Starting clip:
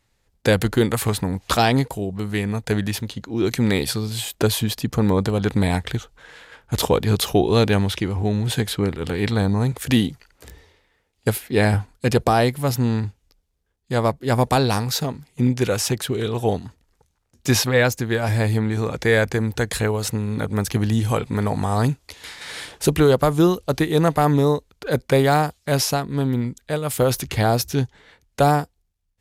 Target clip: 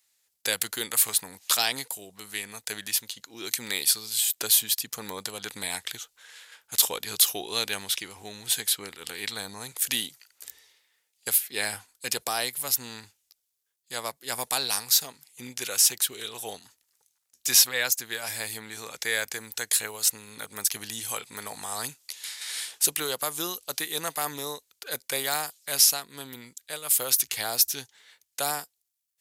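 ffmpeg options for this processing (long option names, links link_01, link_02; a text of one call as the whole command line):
ffmpeg -i in.wav -af "aderivative,volume=5.5dB" out.wav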